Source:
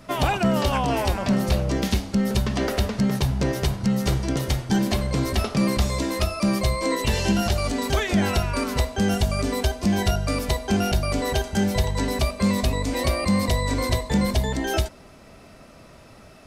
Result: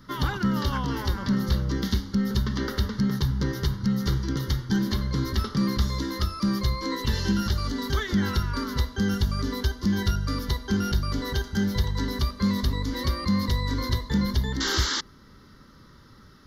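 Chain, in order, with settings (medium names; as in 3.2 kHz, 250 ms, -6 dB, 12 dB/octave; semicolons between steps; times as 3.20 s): painted sound noise, 14.60–15.01 s, 220–7700 Hz -23 dBFS; static phaser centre 2.5 kHz, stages 6; trim -1.5 dB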